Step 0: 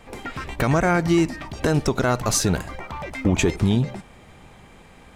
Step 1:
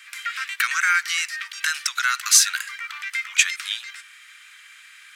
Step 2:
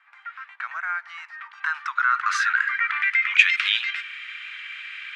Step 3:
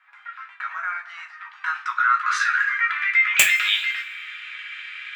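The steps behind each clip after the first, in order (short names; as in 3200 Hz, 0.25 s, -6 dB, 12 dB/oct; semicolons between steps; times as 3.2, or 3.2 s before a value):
steep high-pass 1400 Hz 48 dB/oct; gain +8.5 dB
low-pass sweep 640 Hz -> 2700 Hz, 1–3.56; in parallel at +1 dB: negative-ratio compressor -26 dBFS, ratio -1; on the sum: gain -3.5 dB
wrapped overs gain 4.5 dB; two-slope reverb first 0.24 s, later 1.5 s, from -22 dB, DRR -0.5 dB; gain -2 dB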